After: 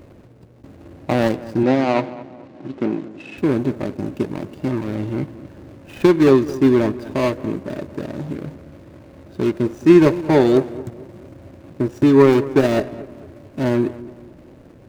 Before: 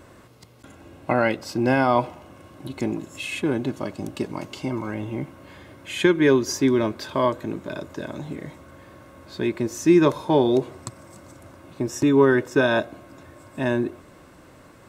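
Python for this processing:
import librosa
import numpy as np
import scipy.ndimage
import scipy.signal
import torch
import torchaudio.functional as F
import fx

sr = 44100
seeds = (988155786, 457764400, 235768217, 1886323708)

y = scipy.signal.medfilt(x, 41)
y = fx.bandpass_edges(y, sr, low_hz=180.0, high_hz=4900.0, at=(1.63, 3.38))
y = fx.echo_filtered(y, sr, ms=221, feedback_pct=43, hz=1700.0, wet_db=-16.5)
y = F.gain(torch.from_numpy(y), 6.0).numpy()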